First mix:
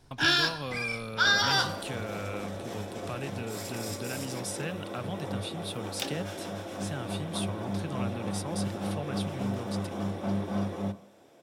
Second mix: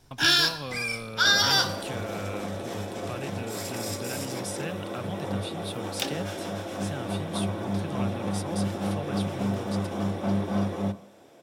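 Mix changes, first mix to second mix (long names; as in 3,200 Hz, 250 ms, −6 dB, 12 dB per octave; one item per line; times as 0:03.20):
first sound: remove low-pass filter 2,800 Hz 6 dB per octave
second sound +4.0 dB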